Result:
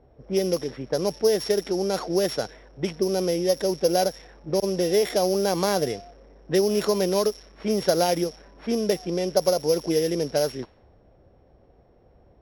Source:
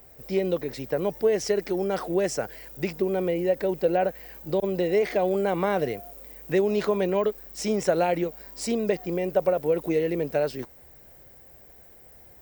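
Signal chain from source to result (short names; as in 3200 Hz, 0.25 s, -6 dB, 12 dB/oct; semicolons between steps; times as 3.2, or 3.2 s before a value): sample sorter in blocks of 8 samples; low-pass opened by the level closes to 670 Hz, open at -20.5 dBFS; gain +1.5 dB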